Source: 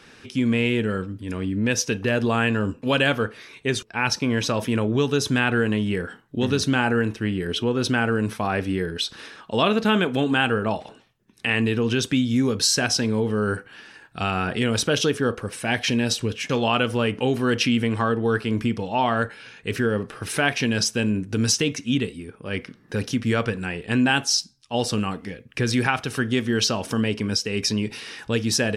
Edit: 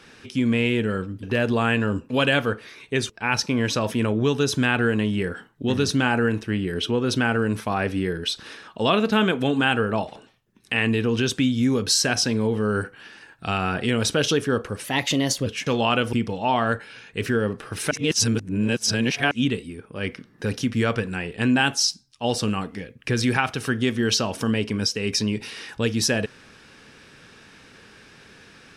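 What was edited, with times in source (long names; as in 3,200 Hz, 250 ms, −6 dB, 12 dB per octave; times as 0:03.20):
0:01.23–0:01.96: remove
0:15.57–0:16.29: play speed 116%
0:16.96–0:18.63: remove
0:20.41–0:21.81: reverse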